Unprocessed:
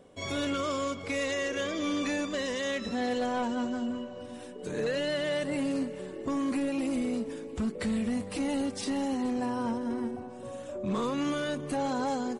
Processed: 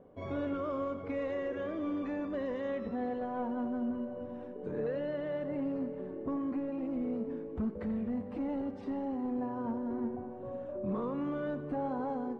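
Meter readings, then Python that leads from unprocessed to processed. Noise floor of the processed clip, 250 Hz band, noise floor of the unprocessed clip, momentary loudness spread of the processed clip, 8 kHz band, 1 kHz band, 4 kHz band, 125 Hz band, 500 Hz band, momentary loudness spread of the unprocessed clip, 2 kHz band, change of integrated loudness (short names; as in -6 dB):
-44 dBFS, -4.0 dB, -43 dBFS, 4 LU, under -35 dB, -5.5 dB, under -20 dB, -3.0 dB, -3.5 dB, 7 LU, -12.5 dB, -4.5 dB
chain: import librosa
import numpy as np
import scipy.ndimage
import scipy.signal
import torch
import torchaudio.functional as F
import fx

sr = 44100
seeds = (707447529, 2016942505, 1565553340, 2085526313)

y = scipy.signal.sosfilt(scipy.signal.butter(2, 1100.0, 'lowpass', fs=sr, output='sos'), x)
y = fx.rider(y, sr, range_db=3, speed_s=0.5)
y = fx.echo_split(y, sr, split_hz=320.0, low_ms=175, high_ms=87, feedback_pct=52, wet_db=-13.0)
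y = F.gain(torch.from_numpy(y), -3.5).numpy()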